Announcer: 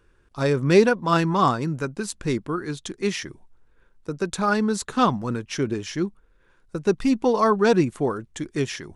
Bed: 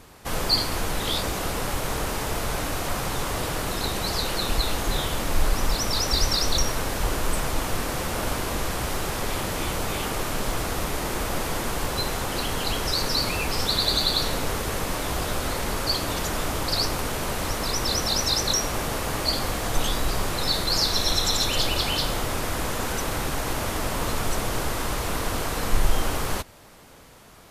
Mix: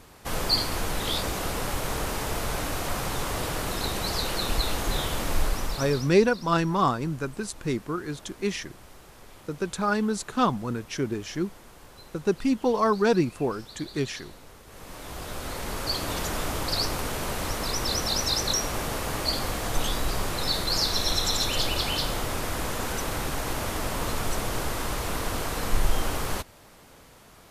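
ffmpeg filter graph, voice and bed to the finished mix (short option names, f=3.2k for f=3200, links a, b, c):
-filter_complex "[0:a]adelay=5400,volume=-3.5dB[a];[1:a]volume=17.5dB,afade=t=out:st=5.31:d=0.84:silence=0.1,afade=t=in:st=14.66:d=1.5:silence=0.105925[b];[a][b]amix=inputs=2:normalize=0"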